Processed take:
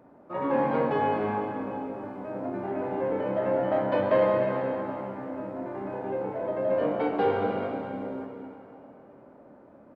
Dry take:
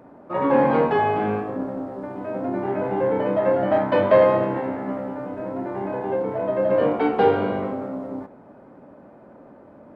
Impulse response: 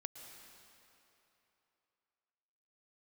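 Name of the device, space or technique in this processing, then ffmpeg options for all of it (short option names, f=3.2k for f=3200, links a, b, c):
cave: -filter_complex "[0:a]aecho=1:1:294:0.251[a];[1:a]atrim=start_sample=2205[b];[a][b]afir=irnorm=-1:irlink=0,volume=-3dB"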